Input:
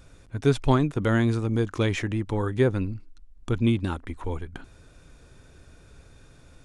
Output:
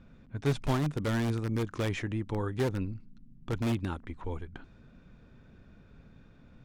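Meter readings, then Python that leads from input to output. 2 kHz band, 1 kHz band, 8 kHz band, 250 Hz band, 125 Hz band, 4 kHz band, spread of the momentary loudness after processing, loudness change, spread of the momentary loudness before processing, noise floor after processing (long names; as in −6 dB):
−6.5 dB, −6.5 dB, −4.0 dB, −7.5 dB, −6.5 dB, −5.5 dB, 13 LU, −7.0 dB, 12 LU, −57 dBFS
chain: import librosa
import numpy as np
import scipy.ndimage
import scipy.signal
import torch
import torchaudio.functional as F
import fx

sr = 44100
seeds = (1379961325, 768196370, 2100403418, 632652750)

p1 = fx.dynamic_eq(x, sr, hz=150.0, q=5.9, threshold_db=-42.0, ratio=4.0, max_db=5)
p2 = (np.mod(10.0 ** (17.0 / 20.0) * p1 + 1.0, 2.0) - 1.0) / 10.0 ** (17.0 / 20.0)
p3 = p1 + F.gain(torch.from_numpy(p2), -7.0).numpy()
p4 = fx.high_shelf(p3, sr, hz=7400.0, db=-7.0)
p5 = fx.dmg_noise_band(p4, sr, seeds[0], low_hz=110.0, high_hz=250.0, level_db=-50.0)
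p6 = fx.env_lowpass(p5, sr, base_hz=2900.0, full_db=-20.0)
y = F.gain(torch.from_numpy(p6), -9.0).numpy()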